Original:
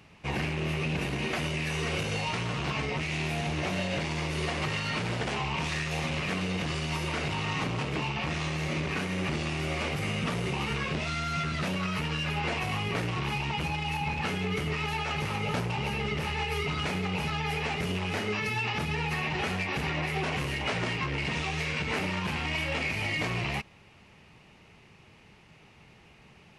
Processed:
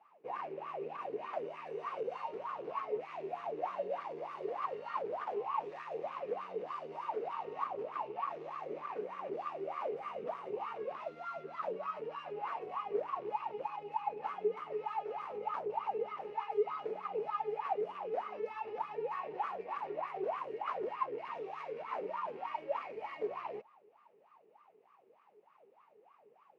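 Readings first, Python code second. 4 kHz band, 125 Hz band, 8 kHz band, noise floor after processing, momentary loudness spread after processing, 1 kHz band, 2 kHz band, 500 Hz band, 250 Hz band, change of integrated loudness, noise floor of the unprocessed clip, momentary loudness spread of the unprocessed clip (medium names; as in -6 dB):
-26.0 dB, -32.5 dB, under -30 dB, -66 dBFS, 5 LU, -2.5 dB, -20.5 dB, -2.0 dB, -19.0 dB, -9.5 dB, -56 dBFS, 1 LU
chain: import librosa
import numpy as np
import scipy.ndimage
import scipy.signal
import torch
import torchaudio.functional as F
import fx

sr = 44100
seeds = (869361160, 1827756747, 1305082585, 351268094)

y = scipy.signal.sosfilt(scipy.signal.butter(2, 190.0, 'highpass', fs=sr, output='sos'), x)
y = fx.wah_lfo(y, sr, hz=3.3, low_hz=410.0, high_hz=1200.0, q=17.0)
y = y * librosa.db_to_amplitude(9.5)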